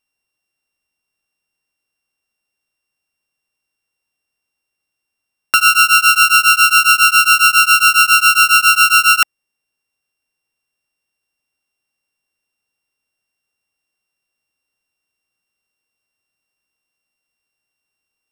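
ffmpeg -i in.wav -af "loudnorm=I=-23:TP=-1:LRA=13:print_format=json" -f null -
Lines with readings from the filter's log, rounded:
"input_i" : "-8.8",
"input_tp" : "-2.3",
"input_lra" : "8.0",
"input_thresh" : "-18.8",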